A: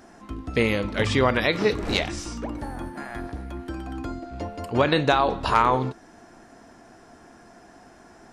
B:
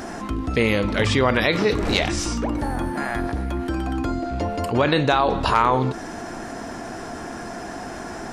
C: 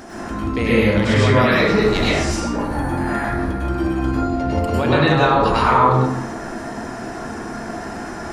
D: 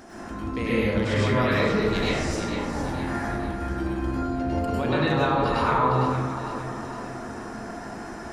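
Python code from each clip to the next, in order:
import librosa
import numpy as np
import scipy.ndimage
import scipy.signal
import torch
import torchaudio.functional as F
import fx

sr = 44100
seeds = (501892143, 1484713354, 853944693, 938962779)

y1 = fx.env_flatten(x, sr, amount_pct=50)
y2 = fx.rev_plate(y1, sr, seeds[0], rt60_s=1.0, hf_ratio=0.45, predelay_ms=90, drr_db=-8.0)
y2 = y2 * librosa.db_to_amplitude(-5.0)
y3 = fx.echo_alternate(y2, sr, ms=229, hz=1300.0, feedback_pct=71, wet_db=-6.0)
y3 = y3 * librosa.db_to_amplitude(-8.5)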